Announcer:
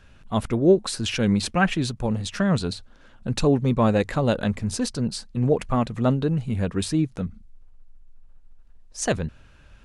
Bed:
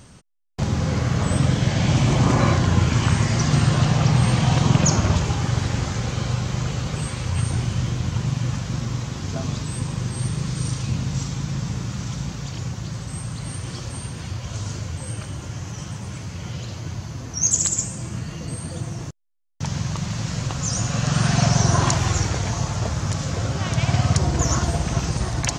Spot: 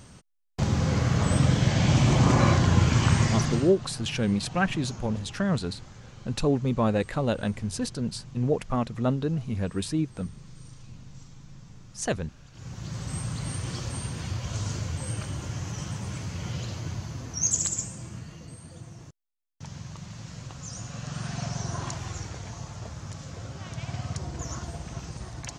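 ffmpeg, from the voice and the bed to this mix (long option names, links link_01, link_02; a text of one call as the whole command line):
ffmpeg -i stem1.wav -i stem2.wav -filter_complex "[0:a]adelay=3000,volume=-4.5dB[link_01];[1:a]volume=17.5dB,afade=type=out:start_time=3.25:duration=0.49:silence=0.105925,afade=type=in:start_time=12.52:duration=0.59:silence=0.1,afade=type=out:start_time=16.59:duration=1.98:silence=0.237137[link_02];[link_01][link_02]amix=inputs=2:normalize=0" out.wav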